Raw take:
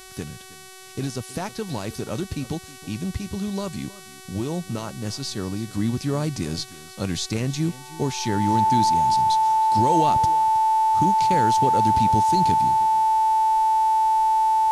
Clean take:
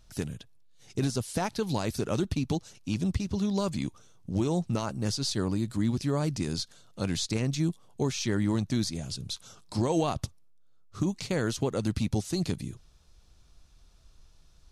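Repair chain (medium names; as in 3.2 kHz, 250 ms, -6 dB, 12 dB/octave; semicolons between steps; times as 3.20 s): de-hum 376.3 Hz, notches 32; band-stop 880 Hz, Q 30; inverse comb 318 ms -19 dB; gain correction -3.5 dB, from 5.73 s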